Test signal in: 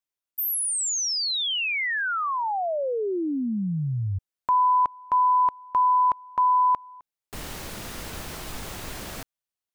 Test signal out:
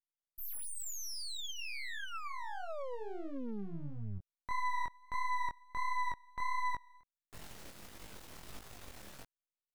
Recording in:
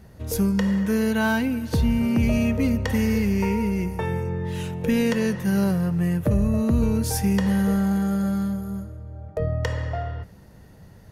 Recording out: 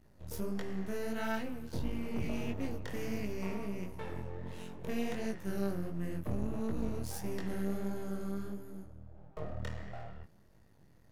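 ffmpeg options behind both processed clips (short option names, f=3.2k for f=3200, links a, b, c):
-af "aeval=exprs='max(val(0),0)':c=same,flanger=delay=18:depth=7.3:speed=1.5,volume=-9dB"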